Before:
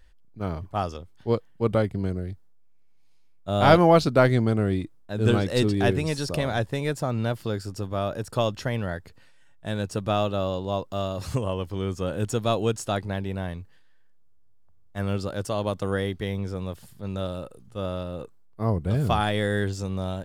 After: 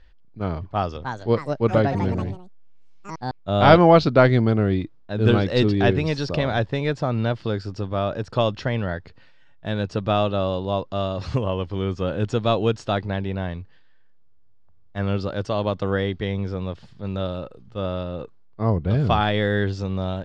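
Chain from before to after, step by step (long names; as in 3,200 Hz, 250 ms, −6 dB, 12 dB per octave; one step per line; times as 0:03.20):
low-pass filter 4,900 Hz 24 dB per octave
0:00.62–0:03.59: delay with pitch and tempo change per echo 333 ms, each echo +4 semitones, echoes 3, each echo −6 dB
level +3.5 dB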